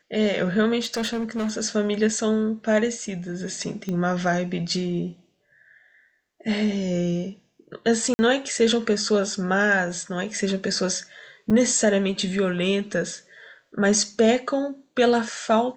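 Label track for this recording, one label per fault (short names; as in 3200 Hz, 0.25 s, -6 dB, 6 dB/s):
0.800000	1.580000	clipped -22.5 dBFS
3.890000	3.890000	pop -17 dBFS
8.140000	8.190000	gap 50 ms
11.500000	11.510000	gap 5.7 ms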